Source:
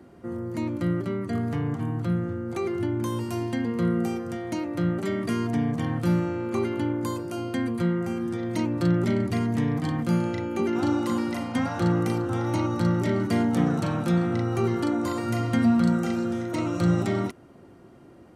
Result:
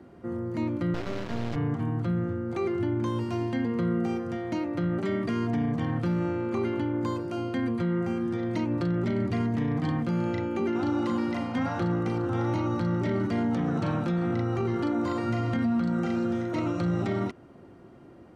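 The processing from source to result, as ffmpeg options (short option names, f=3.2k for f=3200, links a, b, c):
-filter_complex "[0:a]asettb=1/sr,asplit=3[a][b][c];[a]atrim=end=0.944[d];[b]atrim=start=0.94:end=1.56,asetpts=PTS-STARTPTS,afade=t=in:d=0.004:c=qsin,afade=t=out:st=0.616:d=0.004:c=qsin,acrusher=bits=3:dc=4:mix=0:aa=0.000001[e];[c]atrim=start=1.556[f];[d][e]acrossfade=d=0.004:c1=hsin:c2=qsin[g];[g][f]acrossfade=d=0.004:c1=qsin:c2=hsin,acrossover=split=6800[h][i];[i]acompressor=threshold=-59dB:ratio=4:attack=1:release=60[j];[h][j]amix=inputs=2:normalize=0,highshelf=f=6.7k:g=-11.5,alimiter=limit=-20dB:level=0:latency=1:release=20"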